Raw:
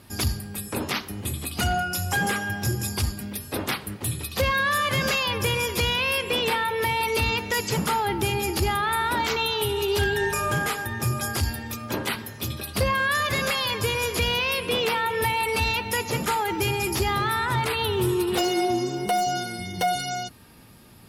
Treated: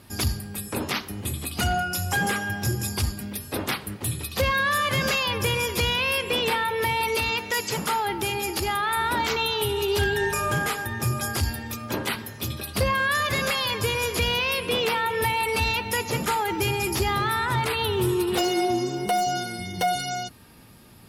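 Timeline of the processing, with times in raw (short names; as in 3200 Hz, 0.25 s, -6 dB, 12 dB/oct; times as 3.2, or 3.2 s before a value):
7.15–8.97 low shelf 250 Hz -9 dB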